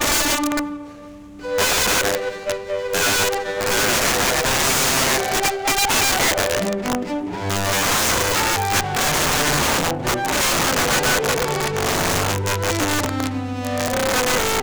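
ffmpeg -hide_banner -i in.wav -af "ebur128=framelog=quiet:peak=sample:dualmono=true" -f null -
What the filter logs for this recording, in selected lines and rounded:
Integrated loudness:
  I:         -15.6 LUFS
  Threshold: -25.8 LUFS
Loudness range:
  LRA:         3.1 LU
  Threshold: -35.5 LUFS
  LRA low:   -17.3 LUFS
  LRA high:  -14.2 LUFS
Sample peak:
  Peak:       -9.6 dBFS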